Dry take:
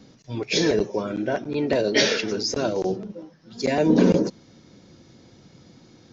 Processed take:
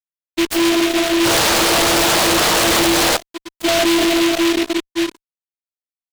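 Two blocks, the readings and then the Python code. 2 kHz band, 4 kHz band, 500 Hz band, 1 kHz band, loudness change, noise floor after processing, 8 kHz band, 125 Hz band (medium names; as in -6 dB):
+11.5 dB, +12.5 dB, +4.5 dB, +14.5 dB, +8.0 dB, under -85 dBFS, no reading, -1.0 dB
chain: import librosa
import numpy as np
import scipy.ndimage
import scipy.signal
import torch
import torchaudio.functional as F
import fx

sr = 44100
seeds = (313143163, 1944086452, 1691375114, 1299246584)

y = fx.lowpass(x, sr, hz=4000.0, slope=6)
y = fx.peak_eq(y, sr, hz=2000.0, db=-2.5, octaves=0.49)
y = fx.hum_notches(y, sr, base_hz=50, count=7)
y = fx.echo_split(y, sr, split_hz=370.0, low_ms=540, high_ms=168, feedback_pct=52, wet_db=-9.5)
y = fx.noise_reduce_blind(y, sr, reduce_db=22)
y = 10.0 ** (-17.0 / 20.0) * np.tanh(y / 10.0 ** (-17.0 / 20.0))
y = fx.vocoder(y, sr, bands=16, carrier='saw', carrier_hz=336.0)
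y = fx.spec_paint(y, sr, seeds[0], shape='noise', start_s=1.24, length_s=1.93, low_hz=430.0, high_hz=1800.0, level_db=-25.0)
y = fx.fuzz(y, sr, gain_db=35.0, gate_db=-41.0)
y = fx.noise_mod_delay(y, sr, seeds[1], noise_hz=2600.0, depth_ms=0.17)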